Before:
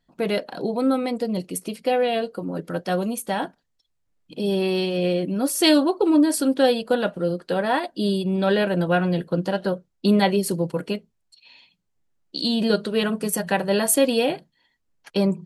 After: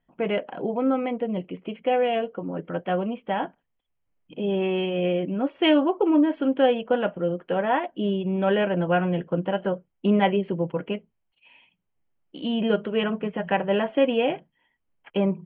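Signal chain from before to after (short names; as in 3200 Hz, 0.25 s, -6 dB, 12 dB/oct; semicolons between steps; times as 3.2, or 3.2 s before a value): rippled Chebyshev low-pass 3200 Hz, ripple 3 dB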